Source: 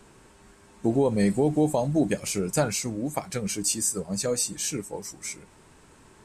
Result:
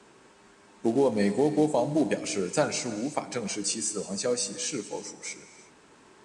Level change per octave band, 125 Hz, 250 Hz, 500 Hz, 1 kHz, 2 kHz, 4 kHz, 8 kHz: -7.0, -2.0, 0.0, +0.5, +0.5, -0.5, -3.5 dB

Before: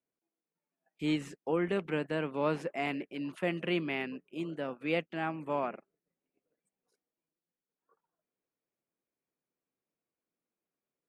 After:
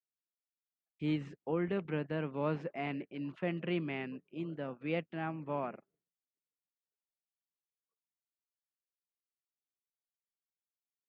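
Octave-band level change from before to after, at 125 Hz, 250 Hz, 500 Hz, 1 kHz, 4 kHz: +1.5, -2.5, -4.0, -4.5, -7.5 dB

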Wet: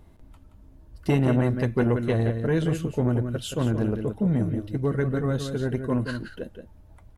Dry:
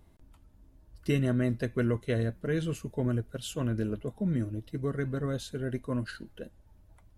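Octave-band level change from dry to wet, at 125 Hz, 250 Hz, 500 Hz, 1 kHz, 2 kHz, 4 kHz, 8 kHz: +6.5, +6.5, +6.5, +9.5, +5.0, +4.0, +3.0 dB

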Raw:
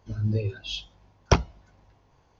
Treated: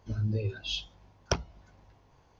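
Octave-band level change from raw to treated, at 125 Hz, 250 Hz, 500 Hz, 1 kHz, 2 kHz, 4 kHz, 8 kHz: -5.5 dB, -6.5 dB, -6.5 dB, -10.5 dB, -5.5 dB, -1.5 dB, n/a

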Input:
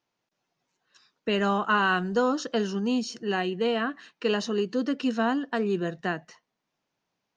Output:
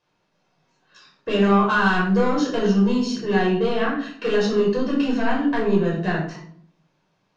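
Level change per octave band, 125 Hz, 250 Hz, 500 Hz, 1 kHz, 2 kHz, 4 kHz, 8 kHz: +11.0 dB, +7.5 dB, +6.5 dB, +4.5 dB, +4.5 dB, +2.0 dB, n/a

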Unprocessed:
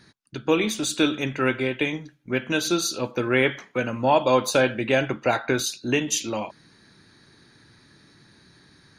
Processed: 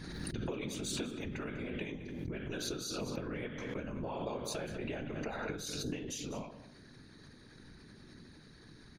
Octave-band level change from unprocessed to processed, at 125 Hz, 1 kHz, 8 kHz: -10.5, -19.5, -14.5 dB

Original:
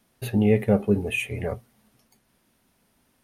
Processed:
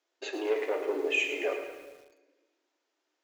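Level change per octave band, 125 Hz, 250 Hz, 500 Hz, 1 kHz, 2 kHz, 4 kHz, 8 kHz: under -40 dB, -16.0 dB, -4.5 dB, -2.5 dB, 0.0 dB, +1.5 dB, -4.0 dB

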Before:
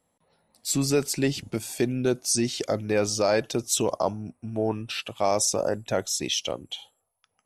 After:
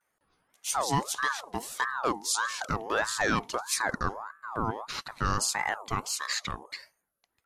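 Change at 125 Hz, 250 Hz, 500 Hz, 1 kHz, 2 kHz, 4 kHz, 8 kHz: -5.5, -9.5, -11.0, +3.0, +5.5, -4.5, -5.0 dB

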